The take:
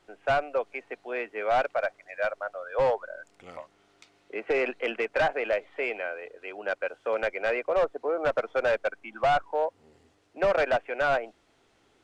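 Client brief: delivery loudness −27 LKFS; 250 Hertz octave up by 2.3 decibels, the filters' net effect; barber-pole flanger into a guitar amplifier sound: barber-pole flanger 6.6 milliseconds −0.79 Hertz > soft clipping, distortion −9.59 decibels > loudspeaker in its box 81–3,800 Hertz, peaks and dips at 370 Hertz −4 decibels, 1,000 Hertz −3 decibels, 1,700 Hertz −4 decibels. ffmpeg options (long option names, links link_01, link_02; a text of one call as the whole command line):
ffmpeg -i in.wav -filter_complex "[0:a]equalizer=frequency=250:width_type=o:gain=5.5,asplit=2[link_01][link_02];[link_02]adelay=6.6,afreqshift=-0.79[link_03];[link_01][link_03]amix=inputs=2:normalize=1,asoftclip=threshold=-27.5dB,highpass=81,equalizer=frequency=370:width_type=q:width=4:gain=-4,equalizer=frequency=1000:width_type=q:width=4:gain=-3,equalizer=frequency=1700:width_type=q:width=4:gain=-4,lowpass=frequency=3800:width=0.5412,lowpass=frequency=3800:width=1.3066,volume=9.5dB" out.wav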